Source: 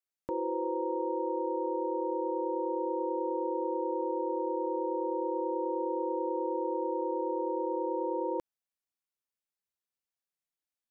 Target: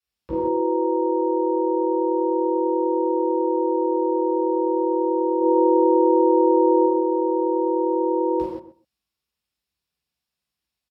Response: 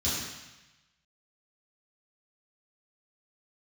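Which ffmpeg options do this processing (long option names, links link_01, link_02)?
-filter_complex "[0:a]asettb=1/sr,asplit=3[link_01][link_02][link_03];[link_01]atrim=end=5.404[link_04];[link_02]atrim=start=5.4:end=6.84,asetpts=PTS-STARTPTS,afade=type=in:duration=0.004:curve=qsin,afade=type=out:start_time=1.436:duration=0.004:curve=qsin,acontrast=22[link_05];[link_03]atrim=start=6.836[link_06];[link_04][link_05]acrossfade=duration=0.004:curve1=hsin:curve2=qsin[link_07];[link_07][link_06]acrossfade=duration=0.004:curve1=qsin:curve2=hsin,asplit=2[link_08][link_09];[link_09]adelay=127,lowpass=frequency=1000:poles=1,volume=-11dB,asplit=2[link_10][link_11];[link_11]adelay=127,lowpass=frequency=1000:poles=1,volume=0.17[link_12];[link_08][link_10][link_12]amix=inputs=3:normalize=0[link_13];[1:a]atrim=start_sample=2205,atrim=end_sample=6615,asetrate=33516,aresample=44100[link_14];[link_13][link_14]afir=irnorm=-1:irlink=0,volume=-1dB"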